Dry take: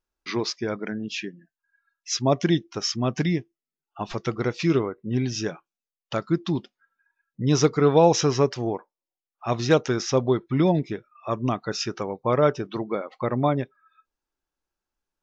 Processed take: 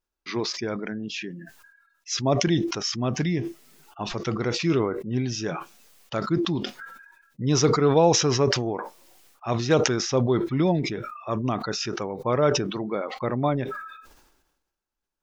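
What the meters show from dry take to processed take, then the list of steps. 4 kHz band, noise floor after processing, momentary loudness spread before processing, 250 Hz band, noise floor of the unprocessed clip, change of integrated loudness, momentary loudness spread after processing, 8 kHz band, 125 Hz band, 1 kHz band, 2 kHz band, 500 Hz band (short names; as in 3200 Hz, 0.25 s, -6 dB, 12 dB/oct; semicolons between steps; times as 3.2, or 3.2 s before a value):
+2.5 dB, -83 dBFS, 11 LU, -0.5 dB, under -85 dBFS, -0.5 dB, 14 LU, n/a, -0.5 dB, -0.5 dB, +1.0 dB, -1.0 dB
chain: sustainer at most 51 dB/s; gain -2 dB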